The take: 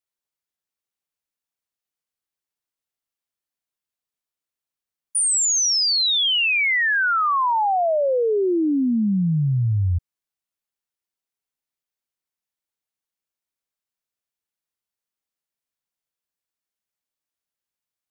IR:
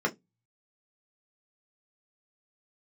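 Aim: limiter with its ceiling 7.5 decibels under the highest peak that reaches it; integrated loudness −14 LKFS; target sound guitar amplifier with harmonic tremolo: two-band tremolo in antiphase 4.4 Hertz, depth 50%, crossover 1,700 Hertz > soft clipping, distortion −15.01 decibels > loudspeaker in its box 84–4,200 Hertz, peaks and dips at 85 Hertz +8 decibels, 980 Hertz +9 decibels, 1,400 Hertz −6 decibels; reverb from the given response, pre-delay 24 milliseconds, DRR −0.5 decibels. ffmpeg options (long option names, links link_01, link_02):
-filter_complex "[0:a]alimiter=limit=-24dB:level=0:latency=1,asplit=2[link_01][link_02];[1:a]atrim=start_sample=2205,adelay=24[link_03];[link_02][link_03]afir=irnorm=-1:irlink=0,volume=-9.5dB[link_04];[link_01][link_04]amix=inputs=2:normalize=0,acrossover=split=1700[link_05][link_06];[link_05]aeval=exprs='val(0)*(1-0.5/2+0.5/2*cos(2*PI*4.4*n/s))':channel_layout=same[link_07];[link_06]aeval=exprs='val(0)*(1-0.5/2-0.5/2*cos(2*PI*4.4*n/s))':channel_layout=same[link_08];[link_07][link_08]amix=inputs=2:normalize=0,asoftclip=threshold=-21.5dB,highpass=84,equalizer=frequency=85:width_type=q:width=4:gain=8,equalizer=frequency=980:width_type=q:width=4:gain=9,equalizer=frequency=1400:width_type=q:width=4:gain=-6,lowpass=frequency=4200:width=0.5412,lowpass=frequency=4200:width=1.3066,volume=13.5dB"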